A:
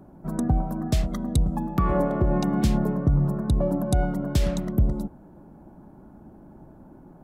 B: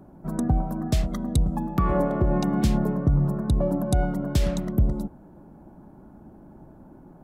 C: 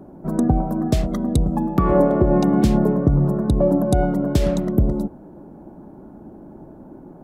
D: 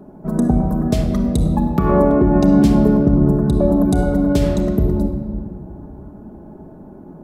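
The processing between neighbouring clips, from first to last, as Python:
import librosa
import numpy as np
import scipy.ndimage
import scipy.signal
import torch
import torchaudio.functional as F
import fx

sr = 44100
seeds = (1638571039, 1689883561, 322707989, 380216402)

y1 = x
y2 = fx.peak_eq(y1, sr, hz=400.0, db=8.5, octaves=2.1)
y2 = F.gain(torch.from_numpy(y2), 1.5).numpy()
y3 = fx.room_shoebox(y2, sr, seeds[0], volume_m3=2600.0, walls='mixed', distance_m=1.4)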